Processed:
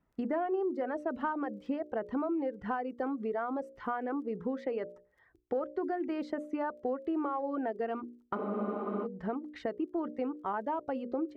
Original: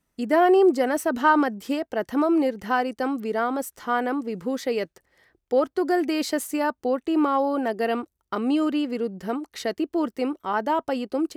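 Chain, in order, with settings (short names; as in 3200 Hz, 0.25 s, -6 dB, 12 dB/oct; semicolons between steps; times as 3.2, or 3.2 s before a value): reverb removal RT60 0.85 s; added harmonics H 5 -30 dB, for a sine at -6.5 dBFS; notches 60/120/180/240/300/360/420/480/540/600 Hz; compressor 4:1, threshold -32 dBFS, peak gain reduction 16 dB; LPF 1500 Hz 12 dB/oct; crackle 18/s -61 dBFS; spectral freeze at 8.39, 0.65 s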